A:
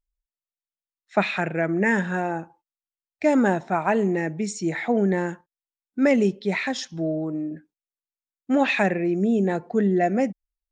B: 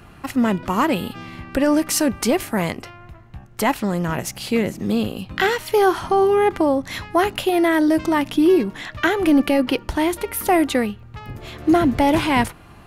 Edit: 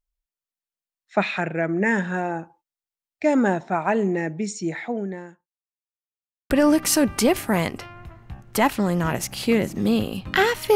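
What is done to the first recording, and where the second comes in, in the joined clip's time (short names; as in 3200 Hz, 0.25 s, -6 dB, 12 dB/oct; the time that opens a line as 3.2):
A
4.58–5.85 fade out quadratic
5.85–6.5 mute
6.5 switch to B from 1.54 s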